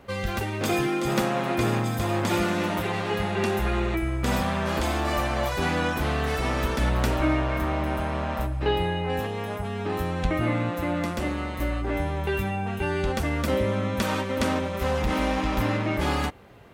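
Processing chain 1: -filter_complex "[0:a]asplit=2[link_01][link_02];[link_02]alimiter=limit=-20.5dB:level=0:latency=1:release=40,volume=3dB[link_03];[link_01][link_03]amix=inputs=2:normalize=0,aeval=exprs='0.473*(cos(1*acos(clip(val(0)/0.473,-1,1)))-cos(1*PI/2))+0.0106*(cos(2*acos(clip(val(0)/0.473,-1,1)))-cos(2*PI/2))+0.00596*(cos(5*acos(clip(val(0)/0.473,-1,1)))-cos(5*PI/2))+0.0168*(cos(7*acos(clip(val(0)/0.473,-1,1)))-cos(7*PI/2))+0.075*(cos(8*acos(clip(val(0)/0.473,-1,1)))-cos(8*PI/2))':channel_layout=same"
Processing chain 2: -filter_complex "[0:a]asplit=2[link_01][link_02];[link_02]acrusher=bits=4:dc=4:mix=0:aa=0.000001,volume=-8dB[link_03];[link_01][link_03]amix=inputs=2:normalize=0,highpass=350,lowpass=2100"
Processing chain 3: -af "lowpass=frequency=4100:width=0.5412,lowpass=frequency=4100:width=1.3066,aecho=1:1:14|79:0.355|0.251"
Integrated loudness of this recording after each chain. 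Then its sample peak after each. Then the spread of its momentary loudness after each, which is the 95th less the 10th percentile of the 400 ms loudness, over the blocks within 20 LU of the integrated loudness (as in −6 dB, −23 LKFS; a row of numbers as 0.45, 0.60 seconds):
−19.5, −28.0, −26.0 LKFS; −5.5, −11.5, −9.0 dBFS; 3, 5, 4 LU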